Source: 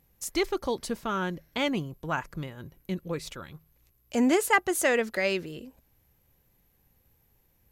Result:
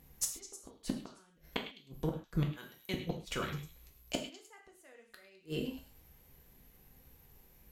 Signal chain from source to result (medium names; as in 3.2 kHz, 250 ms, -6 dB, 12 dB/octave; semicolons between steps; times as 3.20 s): 2.51–2.94 s: high-pass 1.3 kHz 6 dB/octave; inverted gate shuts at -24 dBFS, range -40 dB; repeats whose band climbs or falls 104 ms, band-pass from 3 kHz, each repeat 0.7 oct, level -9 dB; gated-style reverb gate 160 ms falling, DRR 1.5 dB; trim +3.5 dB; SBC 192 kbps 44.1 kHz